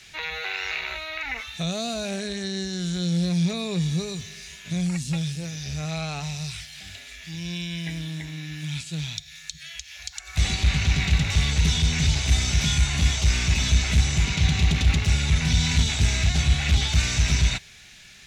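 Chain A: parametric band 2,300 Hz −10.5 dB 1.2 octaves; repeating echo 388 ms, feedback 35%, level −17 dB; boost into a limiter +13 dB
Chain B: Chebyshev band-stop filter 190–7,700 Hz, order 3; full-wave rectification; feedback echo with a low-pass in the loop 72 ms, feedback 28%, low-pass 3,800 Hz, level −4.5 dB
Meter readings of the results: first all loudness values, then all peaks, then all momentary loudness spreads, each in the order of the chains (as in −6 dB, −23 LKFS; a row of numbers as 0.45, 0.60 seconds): −13.5, −30.0 LKFS; −1.0, −8.5 dBFS; 15, 14 LU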